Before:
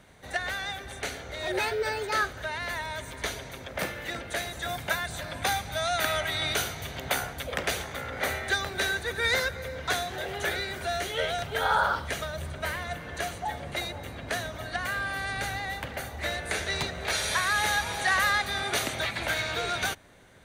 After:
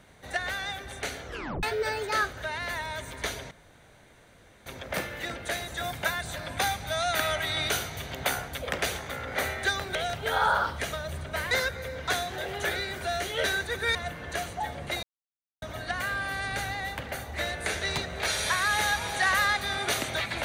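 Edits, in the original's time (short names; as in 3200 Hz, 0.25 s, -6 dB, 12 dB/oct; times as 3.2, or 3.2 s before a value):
1.27 tape stop 0.36 s
3.51 insert room tone 1.15 s
8.8–9.31 swap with 11.24–12.8
13.88–14.47 mute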